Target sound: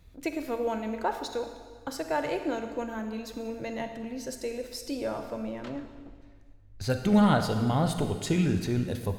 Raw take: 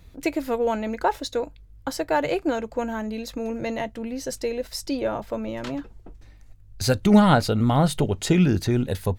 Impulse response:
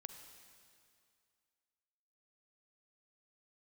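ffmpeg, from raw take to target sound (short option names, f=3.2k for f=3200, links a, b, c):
-filter_complex "[0:a]asettb=1/sr,asplit=3[a][b][c];[a]atrim=end=5.494[d];[b]atrim=start=5.49:end=6.9,asetpts=PTS-STARTPTS,afade=t=in:d=0.004:c=qsin,afade=t=out:st=1.406:d=0.004:c=qsin,highshelf=f=4.3k:g=-10[e];[c]atrim=start=6.896[f];[d][e]acrossfade=d=0.004:c1=hsin:c2=qsin[g];[g][f]acrossfade=d=0.004:c1=qsin:c2=hsin[h];[1:a]atrim=start_sample=2205,asetrate=61740,aresample=44100[i];[h][i]afir=irnorm=-1:irlink=0,volume=2dB"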